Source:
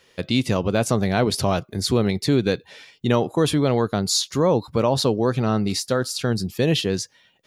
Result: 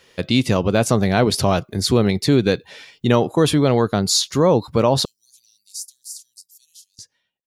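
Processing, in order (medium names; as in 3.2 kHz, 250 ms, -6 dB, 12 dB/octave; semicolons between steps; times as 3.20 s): fade out at the end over 2.13 s; 5.05–6.99 s: inverse Chebyshev high-pass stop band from 1.5 kHz, stop band 70 dB; trim +3.5 dB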